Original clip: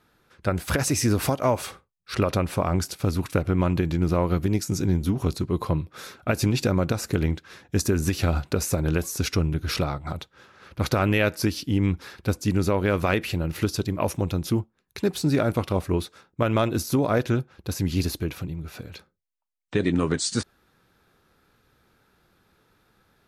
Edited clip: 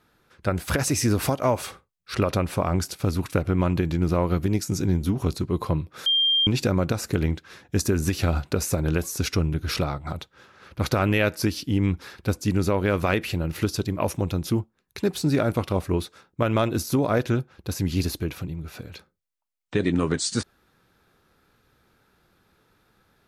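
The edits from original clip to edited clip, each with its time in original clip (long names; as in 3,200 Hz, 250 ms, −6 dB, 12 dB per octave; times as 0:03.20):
0:06.06–0:06.47: beep over 3,190 Hz −17.5 dBFS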